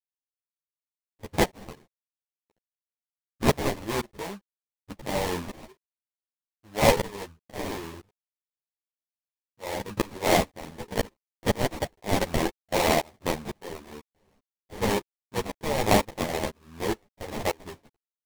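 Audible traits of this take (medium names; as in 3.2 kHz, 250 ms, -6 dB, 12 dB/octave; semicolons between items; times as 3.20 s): aliases and images of a low sample rate 1.4 kHz, jitter 20%; tremolo saw up 2 Hz, depth 100%; a quantiser's noise floor 12-bit, dither none; a shimmering, thickened sound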